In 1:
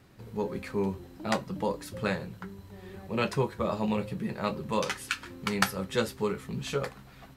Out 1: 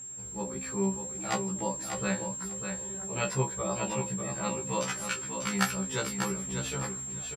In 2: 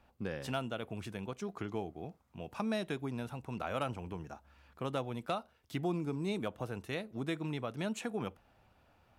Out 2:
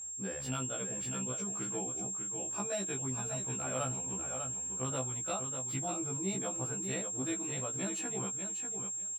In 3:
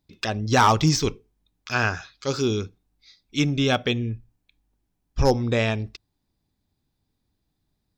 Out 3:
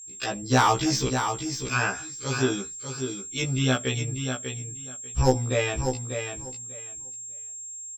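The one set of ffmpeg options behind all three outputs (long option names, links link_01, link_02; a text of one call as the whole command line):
ffmpeg -i in.wav -af "aeval=exprs='val(0)+0.00891*sin(2*PI*7500*n/s)':channel_layout=same,aecho=1:1:594|1188|1782:0.447|0.0759|0.0129,afftfilt=real='re*1.73*eq(mod(b,3),0)':imag='im*1.73*eq(mod(b,3),0)':win_size=2048:overlap=0.75" out.wav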